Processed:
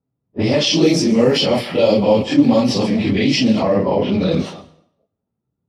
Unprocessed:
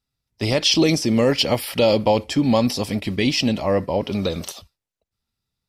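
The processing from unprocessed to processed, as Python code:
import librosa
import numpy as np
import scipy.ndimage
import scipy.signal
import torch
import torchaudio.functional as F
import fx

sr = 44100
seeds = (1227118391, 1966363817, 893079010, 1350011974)

p1 = fx.phase_scramble(x, sr, seeds[0], window_ms=100)
p2 = scipy.signal.sosfilt(scipy.signal.butter(2, 160.0, 'highpass', fs=sr, output='sos'), p1)
p3 = fx.low_shelf(p2, sr, hz=480.0, db=8.0)
p4 = fx.over_compress(p3, sr, threshold_db=-23.0, ratio=-1.0)
p5 = p3 + F.gain(torch.from_numpy(p4), -1.5).numpy()
p6 = fx.env_lowpass(p5, sr, base_hz=710.0, full_db=-7.0)
p7 = fx.rev_plate(p6, sr, seeds[1], rt60_s=0.69, hf_ratio=0.85, predelay_ms=95, drr_db=17.5)
p8 = fx.doppler_dist(p7, sr, depth_ms=0.11)
y = F.gain(torch.from_numpy(p8), -2.0).numpy()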